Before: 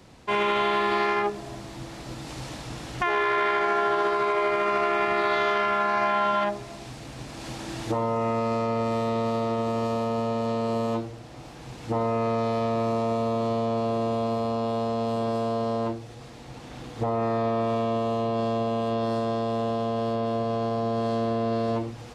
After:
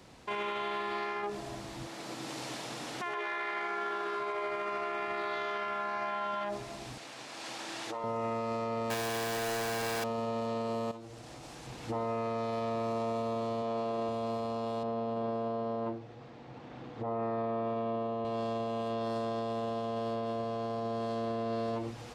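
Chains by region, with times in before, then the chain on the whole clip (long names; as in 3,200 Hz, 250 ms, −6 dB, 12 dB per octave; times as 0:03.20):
0:01.87–0:04.20: high-pass filter 200 Hz + single-tap delay 118 ms −4 dB
0:06.98–0:08.04: meter weighting curve A + downward compressor 5 to 1, threshold −32 dBFS
0:08.90–0:10.04: sign of each sample alone + double-tracking delay 41 ms −7 dB
0:10.91–0:11.67: parametric band 8,200 Hz +6 dB 1.5 octaves + downward compressor, threshold −39 dBFS
0:13.62–0:14.09: high-pass filter 200 Hz 6 dB per octave + high-shelf EQ 6,400 Hz −6.5 dB
0:14.83–0:18.25: high-pass filter 100 Hz + head-to-tape spacing loss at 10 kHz 27 dB
whole clip: low-shelf EQ 240 Hz −5 dB; brickwall limiter −25.5 dBFS; level −2 dB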